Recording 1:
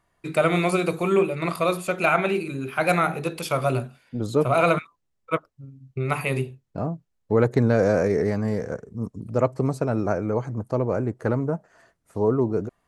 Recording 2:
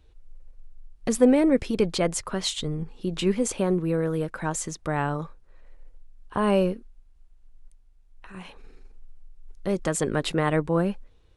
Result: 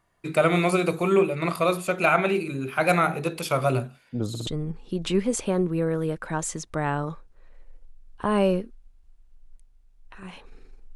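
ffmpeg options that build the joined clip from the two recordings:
ffmpeg -i cue0.wav -i cue1.wav -filter_complex "[0:a]apad=whole_dur=10.95,atrim=end=10.95,asplit=3[link_01][link_02][link_03];[link_01]atrim=end=4.352[link_04];[link_02]atrim=start=4.288:end=4.352[link_05];[link_03]atrim=start=4.288:end=4.352[link_06];[1:a]atrim=start=2.588:end=9.07[link_07];[link_04][link_05]acrossfade=duration=0.004:curve1=hsin:curve2=hsin[link_08];[link_08][link_06]acrossfade=duration=0.004:curve1=hsin:curve2=hsin[link_09];[link_09][link_07]acrossfade=duration=0.004:curve1=hsin:curve2=hsin" out.wav

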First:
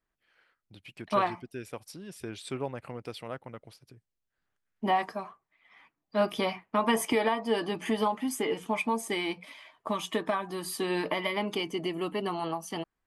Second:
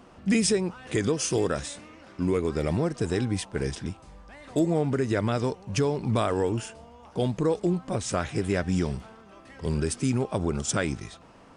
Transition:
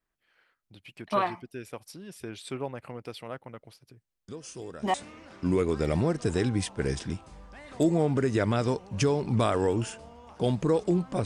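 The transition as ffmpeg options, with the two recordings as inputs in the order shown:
ffmpeg -i cue0.wav -i cue1.wav -filter_complex "[1:a]asplit=2[link_01][link_02];[0:a]apad=whole_dur=11.25,atrim=end=11.25,atrim=end=4.942[link_03];[link_02]atrim=start=1.698:end=8.01[link_04];[link_01]atrim=start=1.04:end=1.7,asetpts=PTS-STARTPTS,volume=-15.5dB,afade=type=in:duration=0.004:curve=hsin,afade=type=out:start_time=0.656:duration=0.004:curve=hsin,adelay=4280[link_05];[link_03][link_04]acrossfade=duration=0.004:curve1=hsin:curve2=hsin[link_06];[link_06][link_05]amix=inputs=2:normalize=0" out.wav

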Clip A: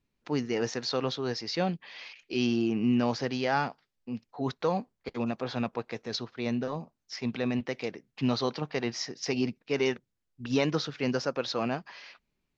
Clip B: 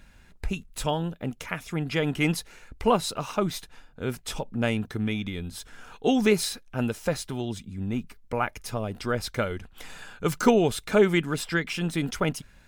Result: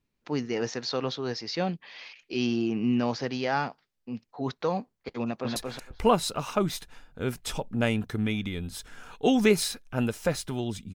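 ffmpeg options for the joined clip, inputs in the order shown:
ffmpeg -i cue0.wav -i cue1.wav -filter_complex "[0:a]apad=whole_dur=10.94,atrim=end=10.94,atrim=end=5.562[link_01];[1:a]atrim=start=2.368:end=7.75[link_02];[link_01][link_02]acrossfade=duration=0.004:curve1=hsin:curve2=hsin,asplit=2[link_03][link_04];[link_04]afade=type=in:start_time=5.21:duration=0.01,afade=type=out:start_time=5.56:duration=0.01,aecho=0:1:230|460:0.749894|0.0749894[link_05];[link_03][link_05]amix=inputs=2:normalize=0" out.wav

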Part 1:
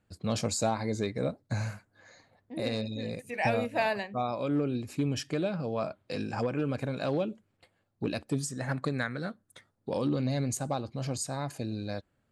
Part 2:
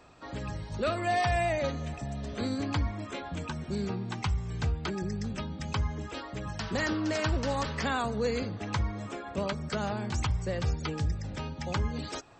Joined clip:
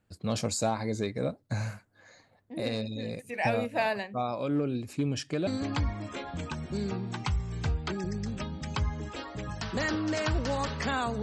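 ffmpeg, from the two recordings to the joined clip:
ffmpeg -i cue0.wav -i cue1.wav -filter_complex "[0:a]asettb=1/sr,asplit=3[link_01][link_02][link_03];[link_01]atrim=end=4.934[link_04];[link_02]atrim=start=4.93:end=5.47,asetpts=PTS-STARTPTS,afade=type=in:duration=0.004:curve=qsin,afade=type=out:start_time=0.536:duration=0.004:curve=qsin,lowpass=frequency=9700:width=0.5412,lowpass=frequency=9700:width=1.3066[link_05];[link_03]atrim=start=5.466[link_06];[link_04][link_05]acrossfade=duration=0.004:curve1=hsin:curve2=qsin[link_07];[link_07][link_06]acrossfade=duration=0.004:curve1=qsin:curve2=hsin,apad=whole_dur=11.22,atrim=end=11.22,atrim=end=5.472[link_08];[1:a]atrim=start=2.448:end=8.2[link_09];[link_08][link_09]acrossfade=duration=0.004:curve1=hsin:curve2=hsin" out.wav

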